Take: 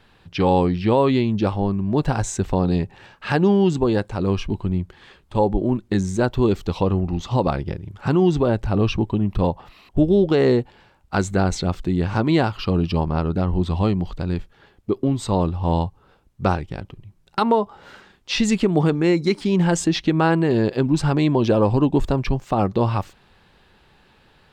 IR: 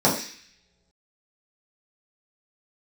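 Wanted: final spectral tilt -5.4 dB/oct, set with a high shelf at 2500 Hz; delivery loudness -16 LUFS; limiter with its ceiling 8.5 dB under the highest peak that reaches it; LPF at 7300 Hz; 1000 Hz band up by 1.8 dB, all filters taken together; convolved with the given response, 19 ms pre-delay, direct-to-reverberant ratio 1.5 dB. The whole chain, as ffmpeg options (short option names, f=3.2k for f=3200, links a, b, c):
-filter_complex "[0:a]lowpass=7.3k,equalizer=f=1k:t=o:g=3,highshelf=f=2.5k:g=-5,alimiter=limit=-14.5dB:level=0:latency=1,asplit=2[a][b];[1:a]atrim=start_sample=2205,adelay=19[c];[b][c]afir=irnorm=-1:irlink=0,volume=-20dB[d];[a][d]amix=inputs=2:normalize=0,volume=3.5dB"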